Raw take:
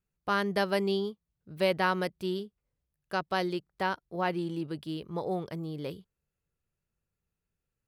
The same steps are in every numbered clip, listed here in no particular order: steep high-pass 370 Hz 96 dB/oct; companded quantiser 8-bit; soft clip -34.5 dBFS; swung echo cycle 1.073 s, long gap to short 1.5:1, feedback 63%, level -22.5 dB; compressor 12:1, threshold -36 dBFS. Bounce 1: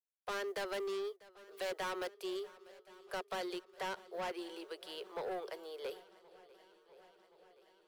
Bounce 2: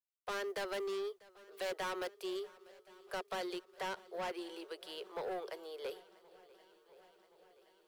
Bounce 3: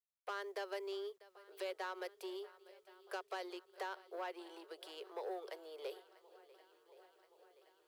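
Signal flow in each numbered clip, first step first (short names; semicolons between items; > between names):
steep high-pass > soft clip > companded quantiser > swung echo > compressor; steep high-pass > soft clip > compressor > swung echo > companded quantiser; compressor > swung echo > soft clip > steep high-pass > companded quantiser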